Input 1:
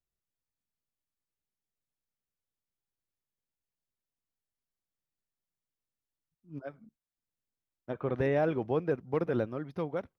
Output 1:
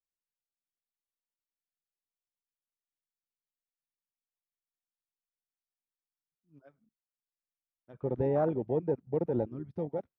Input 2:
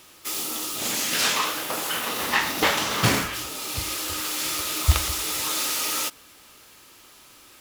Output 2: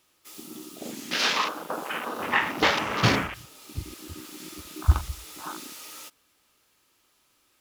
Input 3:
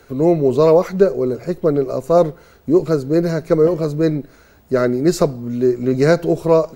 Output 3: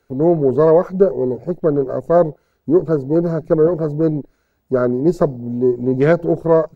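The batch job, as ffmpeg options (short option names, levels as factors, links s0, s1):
-af "afwtdn=0.0447"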